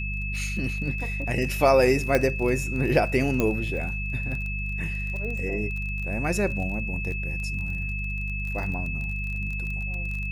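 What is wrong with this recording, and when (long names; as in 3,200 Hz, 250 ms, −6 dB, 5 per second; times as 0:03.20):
surface crackle 22 per second −32 dBFS
mains hum 50 Hz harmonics 4 −31 dBFS
whistle 2,600 Hz −32 dBFS
0:02.15: click −9 dBFS
0:03.40: click −11 dBFS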